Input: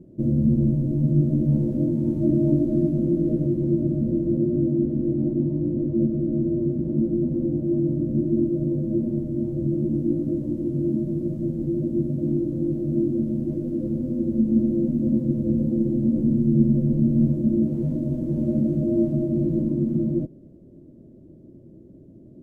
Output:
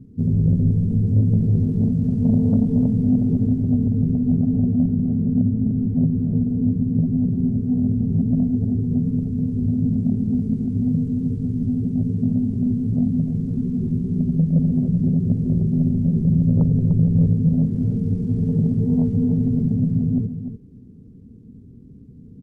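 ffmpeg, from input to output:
-af "aeval=exprs='0.473*(cos(1*acos(clip(val(0)/0.473,-1,1)))-cos(1*PI/2))+0.075*(cos(5*acos(clip(val(0)/0.473,-1,1)))-cos(5*PI/2))+0.00299*(cos(6*acos(clip(val(0)/0.473,-1,1)))-cos(6*PI/2))+0.0188*(cos(7*acos(clip(val(0)/0.473,-1,1)))-cos(7*PI/2))':c=same,asetrate=32097,aresample=44100,atempo=1.37395,aecho=1:1:298:0.335"

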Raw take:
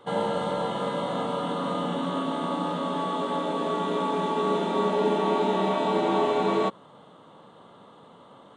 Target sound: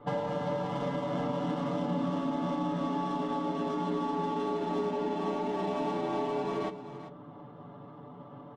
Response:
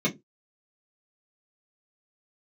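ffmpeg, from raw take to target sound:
-filter_complex "[0:a]adynamicsmooth=sensitivity=6:basefreq=1300,highshelf=f=6200:g=-11,aecho=1:1:6.9:0.93,asplit=2[s0][s1];[1:a]atrim=start_sample=2205,lowshelf=f=240:g=-11.5[s2];[s1][s2]afir=irnorm=-1:irlink=0,volume=0.112[s3];[s0][s3]amix=inputs=2:normalize=0,acompressor=threshold=0.0282:ratio=6,bass=f=250:g=7,treble=f=4000:g=6,bandreject=f=50:t=h:w=6,bandreject=f=100:t=h:w=6,bandreject=f=150:t=h:w=6,aecho=1:1:391:0.237"

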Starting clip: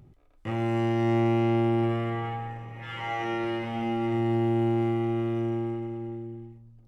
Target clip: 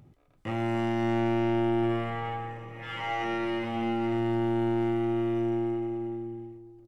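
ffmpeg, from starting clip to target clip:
-filter_complex "[0:a]lowshelf=f=73:g=-10.5,bandreject=f=380:w=12,aeval=exprs='(tanh(12.6*val(0)+0.25)-tanh(0.25))/12.6':c=same,asplit=2[s0][s1];[s1]adelay=283,lowpass=f=840:p=1,volume=0.224,asplit=2[s2][s3];[s3]adelay=283,lowpass=f=840:p=1,volume=0.53,asplit=2[s4][s5];[s5]adelay=283,lowpass=f=840:p=1,volume=0.53,asplit=2[s6][s7];[s7]adelay=283,lowpass=f=840:p=1,volume=0.53,asplit=2[s8][s9];[s9]adelay=283,lowpass=f=840:p=1,volume=0.53[s10];[s0][s2][s4][s6][s8][s10]amix=inputs=6:normalize=0,volume=1.19"

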